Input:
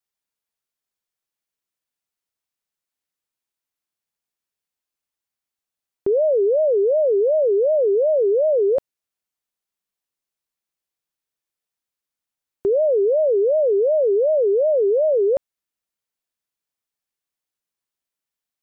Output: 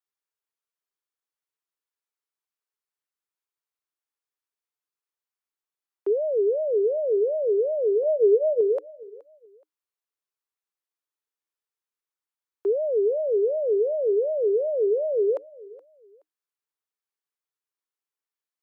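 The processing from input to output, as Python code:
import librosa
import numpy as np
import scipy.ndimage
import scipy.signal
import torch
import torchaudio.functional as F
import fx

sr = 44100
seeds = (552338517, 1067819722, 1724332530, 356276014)

y = scipy.signal.sosfilt(scipy.signal.cheby1(6, 6, 300.0, 'highpass', fs=sr, output='sos'), x)
y = fx.comb(y, sr, ms=4.7, depth=0.78, at=(8.03, 8.61))
y = fx.echo_feedback(y, sr, ms=423, feedback_pct=27, wet_db=-21)
y = y * librosa.db_to_amplitude(-2.5)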